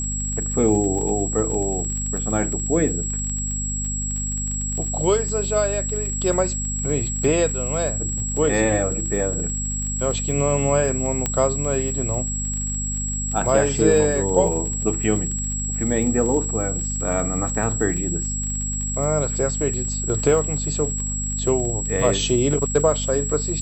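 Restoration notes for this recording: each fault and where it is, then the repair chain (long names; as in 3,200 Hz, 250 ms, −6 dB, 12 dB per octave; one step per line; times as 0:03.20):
surface crackle 30 per second −28 dBFS
mains hum 50 Hz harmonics 5 −28 dBFS
whistle 7,700 Hz −26 dBFS
0:11.26: click −7 dBFS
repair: click removal
hum removal 50 Hz, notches 5
notch filter 7,700 Hz, Q 30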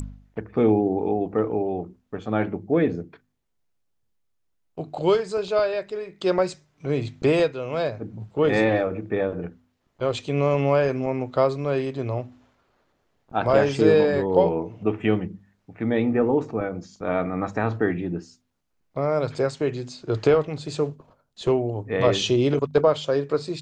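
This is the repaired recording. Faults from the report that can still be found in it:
none of them is left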